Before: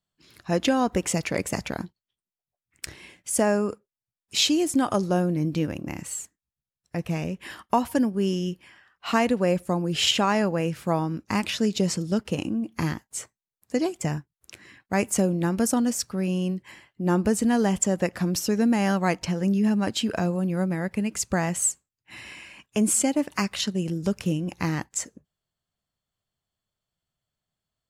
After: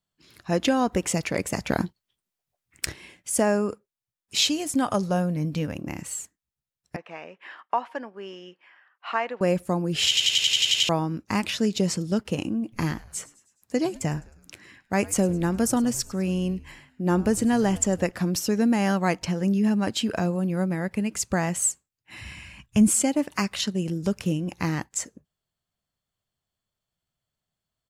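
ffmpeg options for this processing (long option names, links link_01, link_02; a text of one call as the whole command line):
ffmpeg -i in.wav -filter_complex "[0:a]asplit=3[link_01][link_02][link_03];[link_01]afade=type=out:start_time=1.68:duration=0.02[link_04];[link_02]acontrast=86,afade=type=in:start_time=1.68:duration=0.02,afade=type=out:start_time=2.91:duration=0.02[link_05];[link_03]afade=type=in:start_time=2.91:duration=0.02[link_06];[link_04][link_05][link_06]amix=inputs=3:normalize=0,asettb=1/sr,asplit=3[link_07][link_08][link_09];[link_07]atrim=end=4.454[link_10];[link_08]atrim=start=4.45:end=5.76,asetpts=PTS-STARTPTS,afade=type=in:duration=0.004:curve=qsin,afade=type=out:start_time=1.306:duration=0.004:curve=qsin,equalizer=frequency=340:width=6.5:gain=-12[link_11];[link_09]atrim=start=5.756[link_12];[link_10][link_11]acrossfade=duration=0.004:curve1=hsin:curve2=qsin[link_13];[link_13][link_12]acrossfade=duration=0.004:curve1=qsin:curve2=hsin,asettb=1/sr,asplit=3[link_14][link_15][link_16];[link_14]atrim=end=6.964[link_17];[link_15]atrim=start=6.96:end=9.41,asetpts=PTS-STARTPTS,afade=type=in:duration=0.004:curve=qsin,afade=type=out:start_time=2.446:duration=0.004:curve=qsin,highpass=720,lowpass=2200[link_18];[link_16]atrim=start=9.406[link_19];[link_17][link_18]acrossfade=duration=0.004:curve1=hsin:curve2=qsin[link_20];[link_20][link_19]acrossfade=duration=0.004:curve1=qsin:curve2=hsin,asplit=3[link_21][link_22][link_23];[link_21]afade=type=out:start_time=12.72:duration=0.02[link_24];[link_22]asplit=5[link_25][link_26][link_27][link_28][link_29];[link_26]adelay=104,afreqshift=-110,volume=-20dB[link_30];[link_27]adelay=208,afreqshift=-220,volume=-26dB[link_31];[link_28]adelay=312,afreqshift=-330,volume=-32dB[link_32];[link_29]adelay=416,afreqshift=-440,volume=-38.1dB[link_33];[link_25][link_30][link_31][link_32][link_33]amix=inputs=5:normalize=0,afade=type=in:start_time=12.72:duration=0.02,afade=type=out:start_time=18.1:duration=0.02[link_34];[link_23]afade=type=in:start_time=18.1:duration=0.02[link_35];[link_24][link_34][link_35]amix=inputs=3:normalize=0,asplit=3[link_36][link_37][link_38];[link_36]afade=type=out:start_time=22.2:duration=0.02[link_39];[link_37]asubboost=boost=12:cutoff=110,afade=type=in:start_time=22.2:duration=0.02,afade=type=out:start_time=22.87:duration=0.02[link_40];[link_38]afade=type=in:start_time=22.87:duration=0.02[link_41];[link_39][link_40][link_41]amix=inputs=3:normalize=0,asplit=10[link_42][link_43][link_44][link_45][link_46][link_47][link_48][link_49][link_50][link_51];[link_42]atrim=end=10.172[link_52];[link_43]atrim=start=10.078:end=10.172[link_53];[link_44]atrim=start=10.078:end=10.172[link_54];[link_45]atrim=start=10.078:end=10.172[link_55];[link_46]atrim=start=10.078:end=10.172[link_56];[link_47]atrim=start=10.078:end=10.172[link_57];[link_48]atrim=start=10.078:end=10.172[link_58];[link_49]atrim=start=10.078:end=10.172[link_59];[link_50]atrim=start=10.078:end=10.172[link_60];[link_51]atrim=start=10.888[link_61];[link_52][link_53]acrossfade=duration=0.004:curve1=hsin:curve2=hsin[link_62];[link_62][link_54]acrossfade=duration=0.004:curve1=hsin:curve2=hsin[link_63];[link_63][link_55]acrossfade=duration=0.004:curve1=hsin:curve2=hsin[link_64];[link_64][link_56]acrossfade=duration=0.004:curve1=hsin:curve2=hsin[link_65];[link_65][link_57]acrossfade=duration=0.004:curve1=hsin:curve2=hsin[link_66];[link_66][link_58]acrossfade=duration=0.004:curve1=hsin:curve2=hsin[link_67];[link_67][link_59]acrossfade=duration=0.004:curve1=hsin:curve2=hsin[link_68];[link_68][link_60]acrossfade=duration=0.004:curve1=hsin:curve2=hsin[link_69];[link_69][link_61]acrossfade=duration=0.004:curve1=hsin:curve2=hsin" out.wav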